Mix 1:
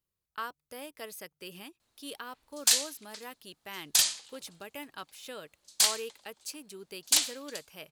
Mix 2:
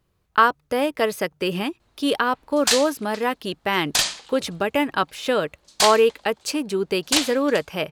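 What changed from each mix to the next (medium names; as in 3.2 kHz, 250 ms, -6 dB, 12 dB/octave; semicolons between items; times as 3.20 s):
speech +9.5 dB; master: remove pre-emphasis filter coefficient 0.8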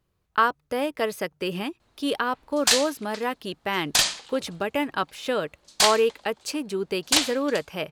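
speech -4.5 dB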